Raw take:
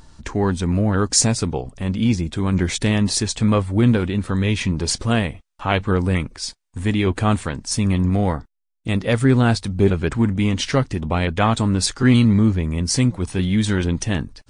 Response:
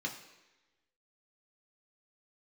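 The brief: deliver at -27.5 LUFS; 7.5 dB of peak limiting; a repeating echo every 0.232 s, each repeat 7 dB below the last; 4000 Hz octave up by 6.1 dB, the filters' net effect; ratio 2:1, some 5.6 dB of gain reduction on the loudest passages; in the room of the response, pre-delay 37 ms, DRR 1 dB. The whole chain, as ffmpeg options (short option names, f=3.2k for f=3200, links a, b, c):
-filter_complex "[0:a]equalizer=f=4k:t=o:g=8,acompressor=threshold=-20dB:ratio=2,alimiter=limit=-13.5dB:level=0:latency=1,aecho=1:1:232|464|696|928|1160:0.447|0.201|0.0905|0.0407|0.0183,asplit=2[a][b];[1:a]atrim=start_sample=2205,adelay=37[c];[b][c]afir=irnorm=-1:irlink=0,volume=-3.5dB[d];[a][d]amix=inputs=2:normalize=0,volume=-7dB"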